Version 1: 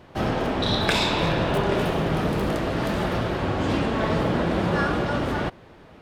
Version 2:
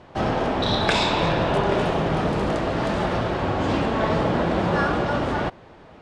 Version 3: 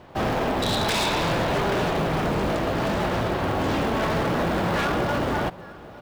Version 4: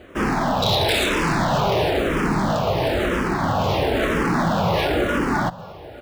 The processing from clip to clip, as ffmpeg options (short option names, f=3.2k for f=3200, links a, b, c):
-af "lowpass=f=8.7k:w=0.5412,lowpass=f=8.7k:w=1.3066,equalizer=f=800:w=1.1:g=4"
-af "aecho=1:1:856:0.0841,aeval=exprs='0.126*(abs(mod(val(0)/0.126+3,4)-2)-1)':c=same,acrusher=bits=7:mode=log:mix=0:aa=0.000001"
-filter_complex "[0:a]asplit=2[a][b];[b]afreqshift=-1[c];[a][c]amix=inputs=2:normalize=1,volume=6.5dB"